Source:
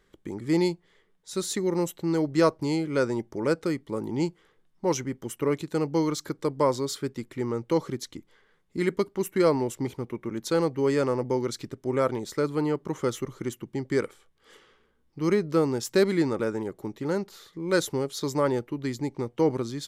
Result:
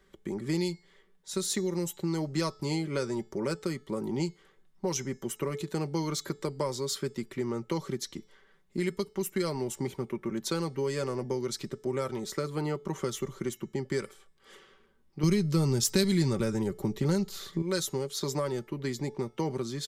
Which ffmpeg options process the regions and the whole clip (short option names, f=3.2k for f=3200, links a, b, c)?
-filter_complex "[0:a]asettb=1/sr,asplit=3[a][b][c];[a]atrim=end=15.234[d];[b]atrim=start=15.23:end=17.62,asetpts=PTS-STARTPTS,afade=t=in:d=0.004:c=qsin,afade=t=out:st=2.386:d=0.004:c=qsin,lowshelf=f=200:g=8.5,acontrast=75[e];[c]atrim=start=17.616[f];[d][e]acrossfade=d=0.004:c1=hsin:c2=qsin[g];[g][f]acrossfade=d=0.004:c1=qsin:c2=hsin,aecho=1:1:5.2:0.5,acrossover=split=130|3000[h][i][j];[i]acompressor=threshold=-29dB:ratio=6[k];[h][k][j]amix=inputs=3:normalize=0,bandreject=f=432.8:t=h:w=4,bandreject=f=865.6:t=h:w=4,bandreject=f=1.2984k:t=h:w=4,bandreject=f=1.7312k:t=h:w=4,bandreject=f=2.164k:t=h:w=4,bandreject=f=2.5968k:t=h:w=4,bandreject=f=3.0296k:t=h:w=4,bandreject=f=3.4624k:t=h:w=4,bandreject=f=3.8952k:t=h:w=4,bandreject=f=4.328k:t=h:w=4,bandreject=f=4.7608k:t=h:w=4,bandreject=f=5.1936k:t=h:w=4,bandreject=f=5.6264k:t=h:w=4,bandreject=f=6.0592k:t=h:w=4,bandreject=f=6.492k:t=h:w=4,bandreject=f=6.9248k:t=h:w=4,bandreject=f=7.3576k:t=h:w=4,bandreject=f=7.7904k:t=h:w=4,bandreject=f=8.2232k:t=h:w=4,bandreject=f=8.656k:t=h:w=4"